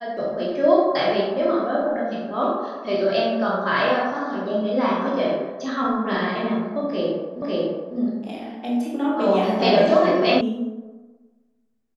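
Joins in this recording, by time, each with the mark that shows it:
7.42 s: repeat of the last 0.55 s
10.41 s: sound stops dead

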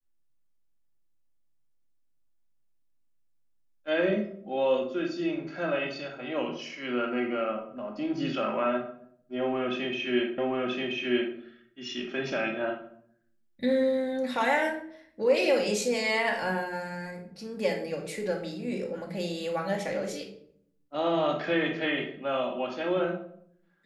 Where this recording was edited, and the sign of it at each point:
10.38 s: repeat of the last 0.98 s

